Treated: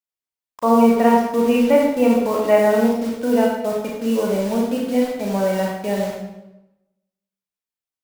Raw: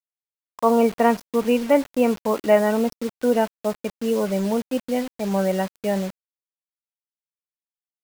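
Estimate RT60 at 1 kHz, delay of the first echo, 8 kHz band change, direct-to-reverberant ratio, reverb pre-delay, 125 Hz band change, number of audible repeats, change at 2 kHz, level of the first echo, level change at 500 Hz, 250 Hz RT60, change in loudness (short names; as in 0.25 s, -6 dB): 0.90 s, none, +2.0 dB, -1.5 dB, 28 ms, n/a, none, +2.5 dB, none, +3.0 dB, 1.0 s, +3.5 dB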